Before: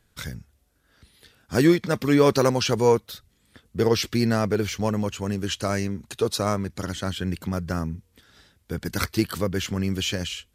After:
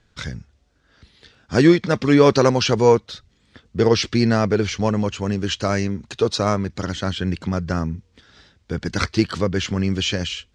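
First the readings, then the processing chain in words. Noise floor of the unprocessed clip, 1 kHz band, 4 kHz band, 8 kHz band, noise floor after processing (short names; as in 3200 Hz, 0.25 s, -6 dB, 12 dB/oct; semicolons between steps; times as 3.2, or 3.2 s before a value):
-66 dBFS, +4.5 dB, +4.5 dB, +1.0 dB, -62 dBFS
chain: LPF 6400 Hz 24 dB/oct; gain +4.5 dB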